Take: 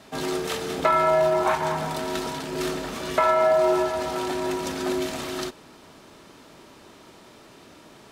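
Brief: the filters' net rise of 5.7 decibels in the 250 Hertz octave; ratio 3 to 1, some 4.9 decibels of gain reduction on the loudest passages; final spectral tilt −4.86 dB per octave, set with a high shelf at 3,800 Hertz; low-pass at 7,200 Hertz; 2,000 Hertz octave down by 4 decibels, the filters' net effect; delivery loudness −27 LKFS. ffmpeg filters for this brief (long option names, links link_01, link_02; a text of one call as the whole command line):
ffmpeg -i in.wav -af "lowpass=7200,equalizer=frequency=250:width_type=o:gain=8.5,equalizer=frequency=2000:width_type=o:gain=-6.5,highshelf=frequency=3800:gain=5.5,acompressor=threshold=-22dB:ratio=3,volume=-1dB" out.wav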